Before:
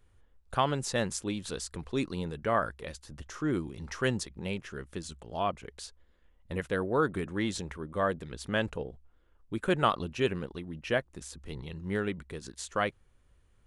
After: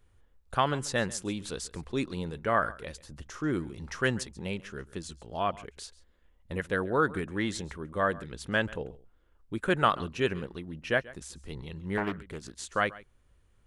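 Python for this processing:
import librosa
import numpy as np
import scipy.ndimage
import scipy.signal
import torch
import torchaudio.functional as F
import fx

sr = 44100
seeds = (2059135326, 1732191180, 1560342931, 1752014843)

y = fx.dynamic_eq(x, sr, hz=1600.0, q=1.7, threshold_db=-42.0, ratio=4.0, max_db=5)
y = y + 10.0 ** (-20.0 / 20.0) * np.pad(y, (int(137 * sr / 1000.0), 0))[:len(y)]
y = fx.doppler_dist(y, sr, depth_ms=0.55, at=(11.97, 12.62))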